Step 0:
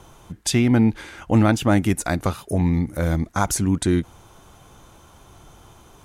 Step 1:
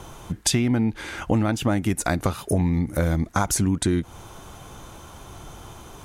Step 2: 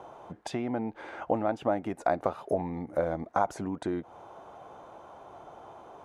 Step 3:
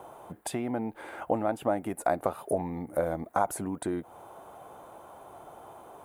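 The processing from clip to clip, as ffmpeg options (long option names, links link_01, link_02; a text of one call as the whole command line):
ffmpeg -i in.wav -af "acompressor=threshold=-25dB:ratio=6,volume=6.5dB" out.wav
ffmpeg -i in.wav -af "bandpass=frequency=670:width_type=q:width=1.9:csg=0,volume=2dB" out.wav
ffmpeg -i in.wav -af "aexciter=amount=8.9:drive=5.9:freq=8400" out.wav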